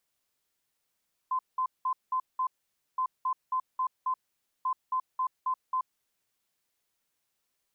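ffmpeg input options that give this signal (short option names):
-f lavfi -i "aevalsrc='0.0531*sin(2*PI*1030*t)*clip(min(mod(mod(t,1.67),0.27),0.08-mod(mod(t,1.67),0.27))/0.005,0,1)*lt(mod(t,1.67),1.35)':d=5.01:s=44100"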